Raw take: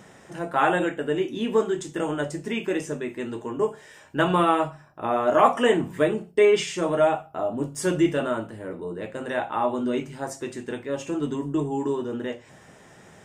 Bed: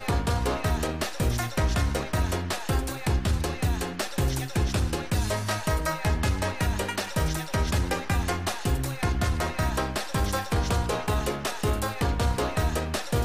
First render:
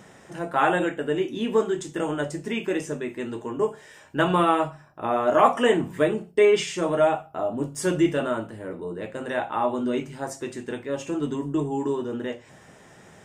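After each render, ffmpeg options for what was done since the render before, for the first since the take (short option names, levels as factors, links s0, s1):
-af anull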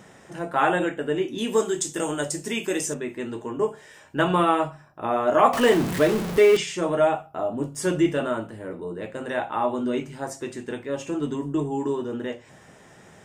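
-filter_complex "[0:a]asettb=1/sr,asplit=3[s0][s1][s2];[s0]atrim=end=1.384[s3];[s1]atrim=start=1.38:end=2.94,asetpts=PTS-STARTPTS,afade=t=in:d=0.004:c=qsin,afade=t=out:st=1.556:d=0.004:c=qsin,bass=f=250:g=-2,treble=f=4000:g=14[s4];[s2]atrim=start=2.936[s5];[s3][s4]acrossfade=d=0.004:c1=hsin:c2=qsin[s6];[s6][s5]acrossfade=d=0.004:c1=qsin:c2=hsin,asettb=1/sr,asplit=3[s7][s8][s9];[s7]atrim=end=5.534[s10];[s8]atrim=start=5.53:end=6.57,asetpts=PTS-STARTPTS,afade=t=in:d=0.004:c=qsin,afade=t=out:st=1.036:d=0.004:c=qsin,aeval=exprs='val(0)+0.5*0.0631*sgn(val(0))':c=same[s11];[s9]atrim=start=6.566[s12];[s10][s11]acrossfade=d=0.004:c1=hsin:c2=qsin[s13];[s13][s12]acrossfade=d=0.004:c1=qsin:c2=hsin"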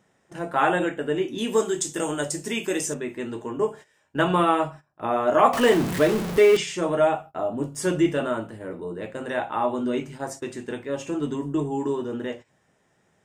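-af "agate=range=0.158:threshold=0.0112:ratio=16:detection=peak"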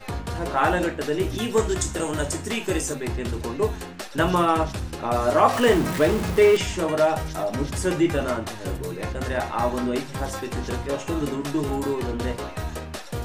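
-filter_complex "[1:a]volume=0.562[s0];[0:a][s0]amix=inputs=2:normalize=0"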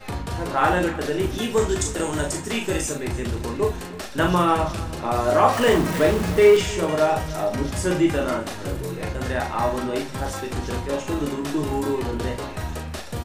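-filter_complex "[0:a]asplit=2[s0][s1];[s1]adelay=39,volume=0.562[s2];[s0][s2]amix=inputs=2:normalize=0,aecho=1:1:309|618|927:0.126|0.0453|0.0163"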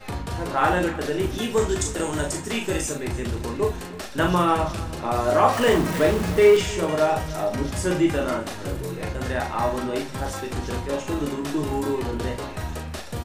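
-af "volume=0.891"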